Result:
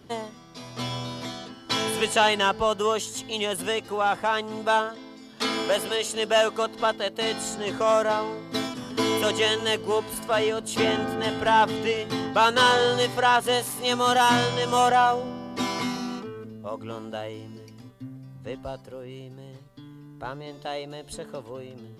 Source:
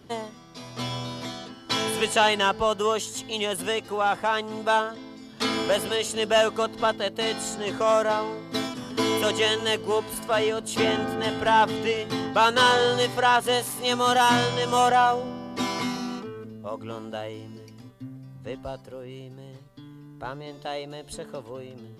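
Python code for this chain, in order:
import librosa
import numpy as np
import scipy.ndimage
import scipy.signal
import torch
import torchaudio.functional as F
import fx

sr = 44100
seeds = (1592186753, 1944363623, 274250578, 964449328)

y = fx.peak_eq(x, sr, hz=72.0, db=-9.5, octaves=2.3, at=(4.89, 7.22))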